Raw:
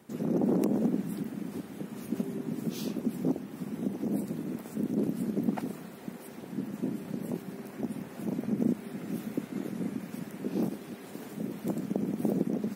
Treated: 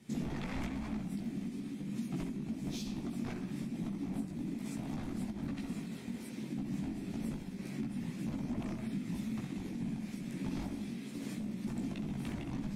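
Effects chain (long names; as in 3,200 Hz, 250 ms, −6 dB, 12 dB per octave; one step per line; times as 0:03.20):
wave folding −30 dBFS
low-pass filter 8,600 Hz 12 dB per octave
flat-topped bell 800 Hz −11.5 dB 2.4 octaves
notch filter 2,900 Hz, Q 17
delay with a low-pass on its return 64 ms, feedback 53%, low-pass 2,900 Hz, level −6 dB
multi-voice chorus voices 6, 0.97 Hz, delay 18 ms, depth 4.2 ms
downward compressor, threshold −41 dBFS, peak gain reduction 10.5 dB
amplitude modulation by smooth noise, depth 55%
level +9 dB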